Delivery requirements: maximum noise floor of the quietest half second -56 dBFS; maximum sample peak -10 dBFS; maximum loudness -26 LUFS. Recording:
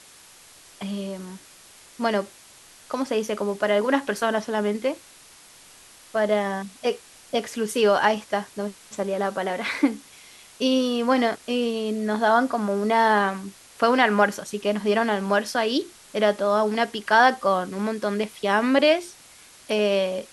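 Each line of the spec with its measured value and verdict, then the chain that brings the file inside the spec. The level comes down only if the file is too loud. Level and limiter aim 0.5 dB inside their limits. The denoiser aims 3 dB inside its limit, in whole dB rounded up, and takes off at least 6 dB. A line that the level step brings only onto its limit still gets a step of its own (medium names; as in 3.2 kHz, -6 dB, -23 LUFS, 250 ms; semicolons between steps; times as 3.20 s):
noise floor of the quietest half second -50 dBFS: fail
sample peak -4.5 dBFS: fail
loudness -23.5 LUFS: fail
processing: noise reduction 6 dB, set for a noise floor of -50 dBFS; trim -3 dB; peak limiter -10.5 dBFS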